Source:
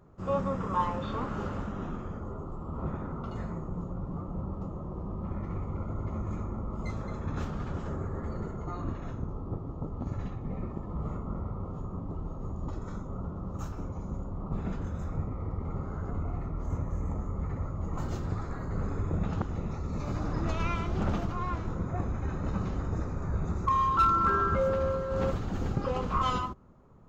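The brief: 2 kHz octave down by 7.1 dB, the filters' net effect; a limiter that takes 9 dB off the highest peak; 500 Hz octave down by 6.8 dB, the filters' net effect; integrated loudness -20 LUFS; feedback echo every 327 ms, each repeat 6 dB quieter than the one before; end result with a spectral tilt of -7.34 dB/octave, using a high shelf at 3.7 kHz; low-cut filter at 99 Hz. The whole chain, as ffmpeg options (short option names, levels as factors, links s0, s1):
-af "highpass=99,equalizer=f=500:t=o:g=-7.5,equalizer=f=2000:t=o:g=-8.5,highshelf=f=3700:g=-4,alimiter=level_in=1.5:limit=0.0631:level=0:latency=1,volume=0.668,aecho=1:1:327|654|981|1308|1635|1962:0.501|0.251|0.125|0.0626|0.0313|0.0157,volume=7.5"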